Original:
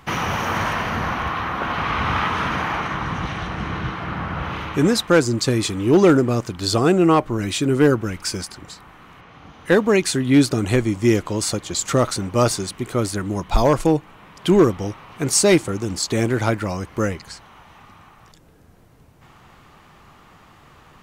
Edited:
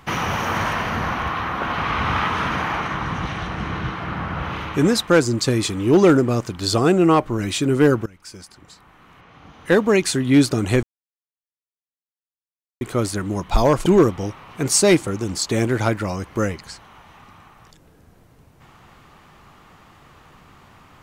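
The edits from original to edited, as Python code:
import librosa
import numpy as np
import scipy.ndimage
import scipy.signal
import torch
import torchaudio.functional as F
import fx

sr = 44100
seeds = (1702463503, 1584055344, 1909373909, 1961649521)

y = fx.edit(x, sr, fx.fade_in_from(start_s=8.06, length_s=1.75, floor_db=-22.0),
    fx.silence(start_s=10.83, length_s=1.98),
    fx.cut(start_s=13.86, length_s=0.61), tone=tone)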